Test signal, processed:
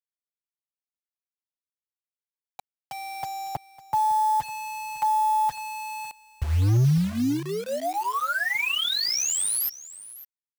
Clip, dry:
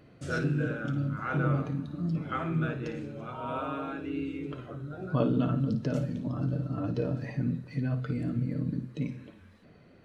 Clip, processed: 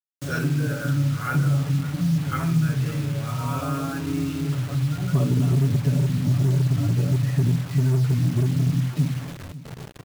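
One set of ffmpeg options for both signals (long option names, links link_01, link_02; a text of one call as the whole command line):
ffmpeg -i in.wav -filter_complex "[0:a]highpass=74,aecho=1:1:7.1:0.85,asubboost=boost=11:cutoff=120,acrossover=split=130[link_01][link_02];[link_01]aeval=exprs='0.106*(abs(mod(val(0)/0.106+3,4)-2)-1)':channel_layout=same[link_03];[link_03][link_02]amix=inputs=2:normalize=0,acompressor=threshold=-25dB:ratio=2.5,acrusher=bits=6:mix=0:aa=0.000001,asplit=2[link_04][link_05];[link_05]aecho=0:1:553:0.141[link_06];[link_04][link_06]amix=inputs=2:normalize=0,volume=4dB" out.wav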